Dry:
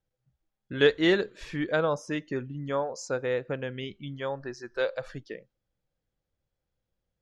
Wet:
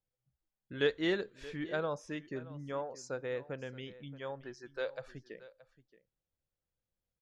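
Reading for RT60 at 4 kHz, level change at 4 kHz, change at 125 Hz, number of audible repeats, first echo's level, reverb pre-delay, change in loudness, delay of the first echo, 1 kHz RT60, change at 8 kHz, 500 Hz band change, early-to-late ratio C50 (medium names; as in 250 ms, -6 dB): no reverb, -9.0 dB, -9.0 dB, 1, -18.0 dB, no reverb, -9.0 dB, 625 ms, no reverb, no reading, -9.0 dB, no reverb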